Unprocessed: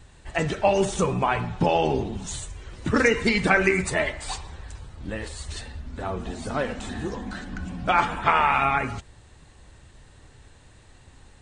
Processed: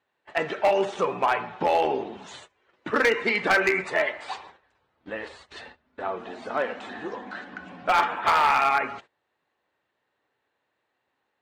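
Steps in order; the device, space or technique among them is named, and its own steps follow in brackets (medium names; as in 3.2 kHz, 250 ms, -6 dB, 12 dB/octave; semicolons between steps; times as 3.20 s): walkie-talkie (band-pass 430–2700 Hz; hard clipper -16.5 dBFS, distortion -14 dB; gate -47 dBFS, range -19 dB); 4.62–6.10 s: bass shelf 92 Hz +10 dB; trim +2 dB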